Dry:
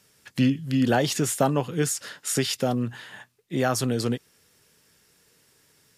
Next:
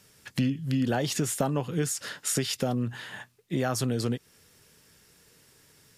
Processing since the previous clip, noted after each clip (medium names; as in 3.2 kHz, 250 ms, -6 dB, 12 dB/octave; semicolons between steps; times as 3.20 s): bass shelf 140 Hz +5.5 dB; compression 2.5:1, threshold -29 dBFS, peak gain reduction 9.5 dB; trim +2 dB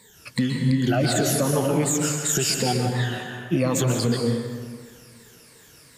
drifting ripple filter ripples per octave 0.98, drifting -2.7 Hz, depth 21 dB; plate-style reverb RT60 1.8 s, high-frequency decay 0.6×, pre-delay 115 ms, DRR 2 dB; peak limiter -14 dBFS, peak gain reduction 6.5 dB; trim +2 dB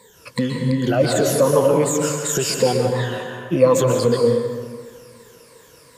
small resonant body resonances 510/1000 Hz, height 14 dB, ringing for 30 ms